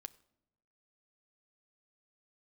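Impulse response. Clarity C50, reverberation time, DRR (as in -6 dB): 20.5 dB, no single decay rate, 12.5 dB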